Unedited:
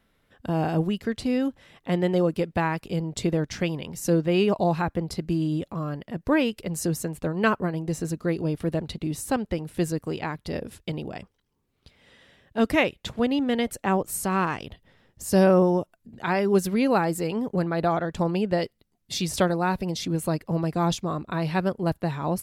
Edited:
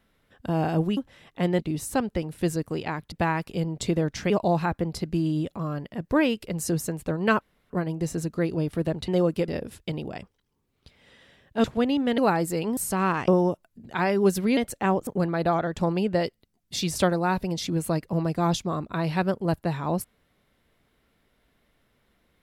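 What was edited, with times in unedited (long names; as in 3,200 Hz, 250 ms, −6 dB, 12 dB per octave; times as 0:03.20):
0:00.97–0:01.46: remove
0:02.08–0:02.48: swap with 0:08.95–0:10.48
0:03.66–0:04.46: remove
0:07.57: splice in room tone 0.29 s
0:12.64–0:13.06: remove
0:13.60–0:14.10: swap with 0:16.86–0:17.45
0:14.61–0:15.57: remove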